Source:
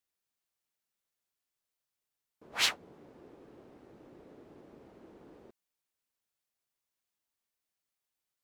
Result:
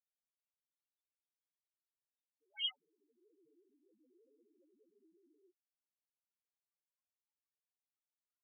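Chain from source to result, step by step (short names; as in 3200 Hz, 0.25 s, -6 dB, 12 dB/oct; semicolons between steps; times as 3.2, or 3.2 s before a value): loudest bins only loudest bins 1; band-pass sweep 3600 Hz -> 1200 Hz, 2.79–3.43; gain +11.5 dB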